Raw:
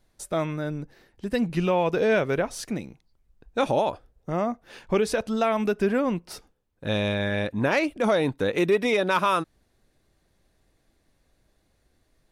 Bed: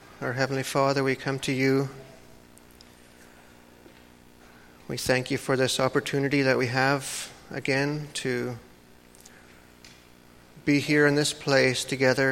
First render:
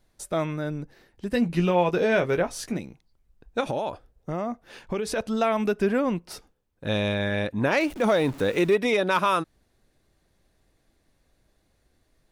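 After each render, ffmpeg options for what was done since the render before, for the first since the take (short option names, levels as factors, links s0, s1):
-filter_complex "[0:a]asettb=1/sr,asplit=3[s0][s1][s2];[s0]atrim=end=1.314[s3];[s1]atrim=start=1.31:end=2.79,asetpts=PTS-STARTPTS,afade=t=in:d=0.004:c=qsin,afade=t=out:st=1.476:d=0.004:c=qsin,asplit=2[s4][s5];[s5]adelay=17,volume=0.398[s6];[s4][s6]amix=inputs=2:normalize=0,atrim=end_sample=65268[s7];[s2]atrim=start=2.786[s8];[s3][s7]acrossfade=d=0.004:c1=hsin:c2=qsin[s9];[s9][s8]acrossfade=d=0.004:c1=qsin:c2=hsin,asettb=1/sr,asplit=3[s10][s11][s12];[s10]atrim=end=3.604[s13];[s11]atrim=start=3.6:end=5.16,asetpts=PTS-STARTPTS,afade=t=in:d=0.004:c=qsin,afade=t=out:st=1.556:d=0.004:c=qsin,acompressor=threshold=0.0631:ratio=5:attack=3.2:release=140:knee=1:detection=peak[s14];[s12]atrim=start=5.156[s15];[s13][s14]acrossfade=d=0.004:c1=hsin:c2=qsin[s16];[s16][s15]acrossfade=d=0.004:c1=qsin:c2=hsin,asettb=1/sr,asplit=3[s17][s18][s19];[s17]atrim=end=7.804[s20];[s18]atrim=start=7.8:end=8.74,asetpts=PTS-STARTPTS,afade=t=in:d=0.004:c=qsin,afade=t=out:st=0.936:d=0.004:c=qsin,aeval=exprs='val(0)+0.5*0.0133*sgn(val(0))':c=same[s21];[s19]atrim=start=8.736[s22];[s20][s21]acrossfade=d=0.004:c1=hsin:c2=qsin[s23];[s23][s22]acrossfade=d=0.004:c1=qsin:c2=hsin"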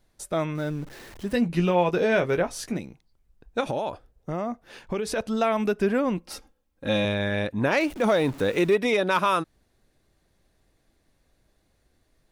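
-filter_complex "[0:a]asettb=1/sr,asplit=3[s0][s1][s2];[s0]atrim=end=0.554[s3];[s1]atrim=start=0.55:end=1.33,asetpts=PTS-STARTPTS,afade=t=in:d=0.004:c=qsin,afade=t=out:st=0.776:d=0.004:c=qsin,aeval=exprs='val(0)+0.5*0.00944*sgn(val(0))':c=same[s4];[s2]atrim=start=1.326[s5];[s3][s4]acrossfade=d=0.004:c1=hsin:c2=qsin[s6];[s6][s5]acrossfade=d=0.004:c1=qsin:c2=hsin,asettb=1/sr,asplit=3[s7][s8][s9];[s7]atrim=end=6.174[s10];[s8]atrim=start=6.17:end=7.05,asetpts=PTS-STARTPTS,afade=t=in:d=0.004:c=qsin,afade=t=out:st=0.876:d=0.004:c=qsin,aecho=1:1:3.7:0.65,atrim=end_sample=38808[s11];[s9]atrim=start=7.046[s12];[s10][s11]acrossfade=d=0.004:c1=hsin:c2=qsin[s13];[s13][s12]acrossfade=d=0.004:c1=qsin:c2=hsin"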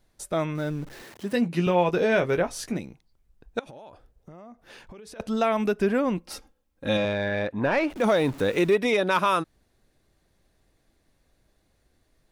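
-filter_complex "[0:a]asettb=1/sr,asplit=3[s0][s1][s2];[s0]atrim=end=1.034[s3];[s1]atrim=start=1.03:end=1.67,asetpts=PTS-STARTPTS,afade=t=in:d=0.004:c=qsin,afade=t=out:st=0.636:d=0.004:c=qsin,highpass=150[s4];[s2]atrim=start=1.666[s5];[s3][s4]acrossfade=d=0.004:c1=hsin:c2=qsin[s6];[s6][s5]acrossfade=d=0.004:c1=qsin:c2=hsin,asettb=1/sr,asplit=3[s7][s8][s9];[s7]atrim=end=3.594[s10];[s8]atrim=start=3.59:end=5.2,asetpts=PTS-STARTPTS,afade=t=in:d=0.004:c=qsin,afade=t=out:st=1.606:d=0.004:c=qsin,acompressor=threshold=0.00794:ratio=8:attack=3.2:release=140:knee=1:detection=peak[s11];[s9]atrim=start=5.196[s12];[s10][s11]acrossfade=d=0.004:c1=hsin:c2=qsin[s13];[s13][s12]acrossfade=d=0.004:c1=qsin:c2=hsin,asettb=1/sr,asplit=3[s14][s15][s16];[s14]atrim=end=6.974[s17];[s15]atrim=start=6.97:end=7.95,asetpts=PTS-STARTPTS,afade=t=in:d=0.004:c=qsin,afade=t=out:st=0.976:d=0.004:c=qsin,asplit=2[s18][s19];[s19]highpass=f=720:p=1,volume=3.55,asoftclip=type=tanh:threshold=0.251[s20];[s18][s20]amix=inputs=2:normalize=0,lowpass=f=1200:p=1,volume=0.501[s21];[s16]atrim=start=7.946[s22];[s17][s21]acrossfade=d=0.004:c1=hsin:c2=qsin[s23];[s23][s22]acrossfade=d=0.004:c1=qsin:c2=hsin"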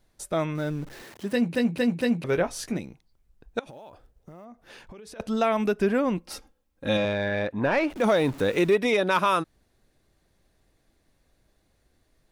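-filter_complex "[0:a]asettb=1/sr,asplit=3[s0][s1][s2];[s0]atrim=end=3.684[s3];[s1]atrim=start=3.68:end=4.45,asetpts=PTS-STARTPTS,afade=t=in:d=0.004:c=qsin,afade=t=out:st=0.766:d=0.004:c=qsin,acrusher=bits=8:mode=log:mix=0:aa=0.000001[s4];[s2]atrim=start=4.446[s5];[s3][s4]acrossfade=d=0.004:c1=hsin:c2=qsin[s6];[s6][s5]acrossfade=d=0.004:c1=qsin:c2=hsin,asplit=5[s7][s8][s9][s10][s11];[s7]atrim=end=1.552[s12];[s8]atrim=start=1.318:end=1.552[s13];[s9]atrim=start=1.318:end=1.552[s14];[s10]atrim=start=1.318:end=1.552[s15];[s11]atrim=start=2.238[s16];[s12][s13]acrossfade=d=0.004:c1=hsin:c2=hsin[s17];[s17][s14]acrossfade=d=0.004:c1=hsin:c2=hsin[s18];[s18][s15]acrossfade=d=0.004:c1=hsin:c2=hsin[s19];[s19][s16]acrossfade=d=0.004:c1=hsin:c2=hsin"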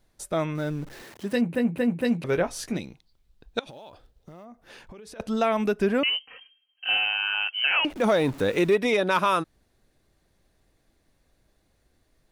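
-filter_complex "[0:a]asettb=1/sr,asplit=3[s0][s1][s2];[s0]atrim=end=1.414[s3];[s1]atrim=start=1.41:end=2.05,asetpts=PTS-STARTPTS,afade=t=in:d=0.004:c=qsin,afade=t=out:st=0.636:d=0.004:c=qsin,equalizer=f=5000:w=1.1:g=-14[s4];[s2]atrim=start=2.046[s5];[s3][s4]acrossfade=d=0.004:c1=hsin:c2=qsin[s6];[s6][s5]acrossfade=d=0.004:c1=qsin:c2=hsin,asettb=1/sr,asplit=3[s7][s8][s9];[s7]atrim=end=2.744[s10];[s8]atrim=start=2.74:end=4.43,asetpts=PTS-STARTPTS,afade=t=in:d=0.004:c=qsin,afade=t=out:st=1.686:d=0.004:c=qsin,equalizer=f=3800:w=1.4:g=9[s11];[s9]atrim=start=4.426[s12];[s10][s11]acrossfade=d=0.004:c1=hsin:c2=qsin[s13];[s13][s12]acrossfade=d=0.004:c1=qsin:c2=hsin,asettb=1/sr,asplit=3[s14][s15][s16];[s14]atrim=end=6.034[s17];[s15]atrim=start=6.03:end=7.85,asetpts=PTS-STARTPTS,afade=t=in:d=0.004:c=qsin,afade=t=out:st=1.816:d=0.004:c=qsin,lowpass=f=2700:t=q:w=0.5098,lowpass=f=2700:t=q:w=0.6013,lowpass=f=2700:t=q:w=0.9,lowpass=f=2700:t=q:w=2.563,afreqshift=-3200[s18];[s16]atrim=start=7.846[s19];[s17][s18]acrossfade=d=0.004:c1=hsin:c2=qsin[s20];[s20][s19]acrossfade=d=0.004:c1=qsin:c2=hsin"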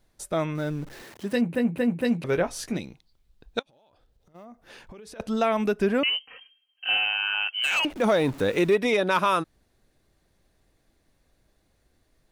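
-filter_complex "[0:a]asplit=3[s0][s1][s2];[s0]afade=t=out:st=3.61:d=0.02[s3];[s1]acompressor=threshold=0.00126:ratio=10:attack=3.2:release=140:knee=1:detection=peak,afade=t=in:st=3.61:d=0.02,afade=t=out:st=4.34:d=0.02[s4];[s2]afade=t=in:st=4.34:d=0.02[s5];[s3][s4][s5]amix=inputs=3:normalize=0,asettb=1/sr,asplit=3[s6][s7][s8];[s6]atrim=end=7.514[s9];[s7]atrim=start=7.51:end=7.98,asetpts=PTS-STARTPTS,afade=t=in:d=0.004:c=qsin,afade=t=out:st=0.466:d=0.004:c=qsin,volume=10,asoftclip=hard,volume=0.1[s10];[s8]atrim=start=7.976[s11];[s9][s10]acrossfade=d=0.004:c1=hsin:c2=qsin[s12];[s12][s11]acrossfade=d=0.004:c1=qsin:c2=hsin"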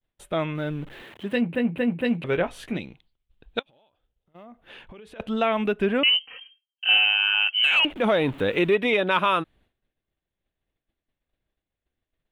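-af "agate=range=0.0224:threshold=0.002:ratio=3:detection=peak,highshelf=f=4100:t=q:w=3:g=-9"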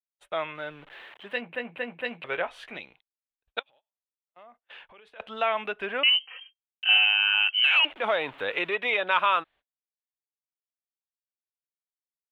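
-filter_complex "[0:a]agate=range=0.0316:threshold=0.00398:ratio=16:detection=peak,acrossover=split=570 4300:gain=0.0891 1 0.2[s0][s1][s2];[s0][s1][s2]amix=inputs=3:normalize=0"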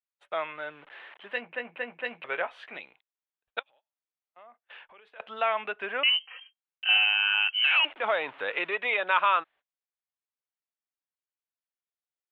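-af "lowpass=2000,aemphasis=mode=production:type=riaa"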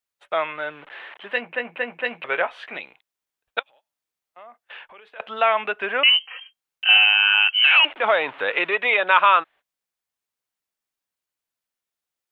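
-af "volume=2.51"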